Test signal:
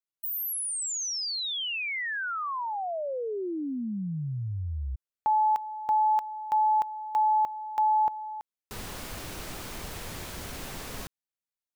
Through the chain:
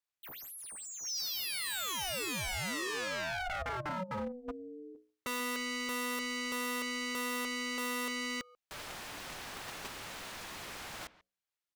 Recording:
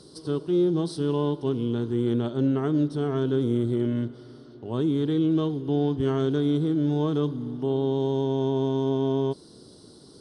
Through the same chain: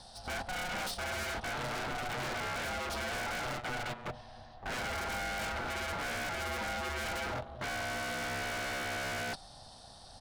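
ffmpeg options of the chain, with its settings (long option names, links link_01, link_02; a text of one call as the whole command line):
ffmpeg -i in.wav -filter_complex "[0:a]asplit=2[link_01][link_02];[link_02]highpass=frequency=720:poles=1,volume=30dB,asoftclip=type=tanh:threshold=-14dB[link_03];[link_01][link_03]amix=inputs=2:normalize=0,lowpass=frequency=2900:poles=1,volume=-6dB,highshelf=frequency=3400:gain=3,bandreject=frequency=60:width_type=h:width=6,bandreject=frequency=120:width_type=h:width=6,bandreject=frequency=180:width_type=h:width=6,bandreject=frequency=240:width_type=h:width=6,bandreject=frequency=300:width_type=h:width=6,bandreject=frequency=360:width_type=h:width=6,asplit=2[link_04][link_05];[link_05]adelay=140,highpass=300,lowpass=3400,asoftclip=type=hard:threshold=-21.5dB,volume=-17dB[link_06];[link_04][link_06]amix=inputs=2:normalize=0,aeval=exprs='val(0)*sin(2*PI*370*n/s)':channel_layout=same,agate=range=-13dB:threshold=-25dB:ratio=16:release=126:detection=rms,aeval=exprs='0.0398*(abs(mod(val(0)/0.0398+3,4)-2)-1)':channel_layout=same,volume=-3.5dB" out.wav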